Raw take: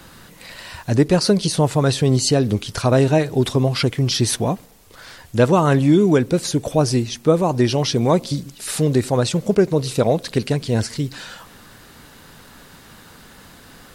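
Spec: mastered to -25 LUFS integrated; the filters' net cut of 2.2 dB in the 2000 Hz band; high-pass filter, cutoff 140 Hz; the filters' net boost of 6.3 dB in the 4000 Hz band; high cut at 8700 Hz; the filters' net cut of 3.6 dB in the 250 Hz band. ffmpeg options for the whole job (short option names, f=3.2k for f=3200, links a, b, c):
-af "highpass=140,lowpass=8.7k,equalizer=f=250:t=o:g=-4,equalizer=f=2k:t=o:g=-5.5,equalizer=f=4k:t=o:g=9,volume=-5.5dB"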